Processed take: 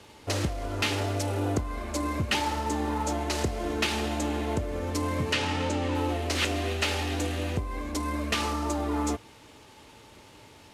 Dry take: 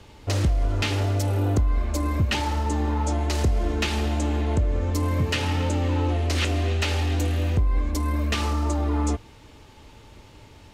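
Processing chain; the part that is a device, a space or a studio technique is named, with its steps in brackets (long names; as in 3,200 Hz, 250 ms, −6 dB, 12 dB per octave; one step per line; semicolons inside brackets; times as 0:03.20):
early wireless headset (high-pass filter 230 Hz 6 dB per octave; variable-slope delta modulation 64 kbit/s)
0:05.33–0:05.95: low-pass filter 7,700 Hz 12 dB per octave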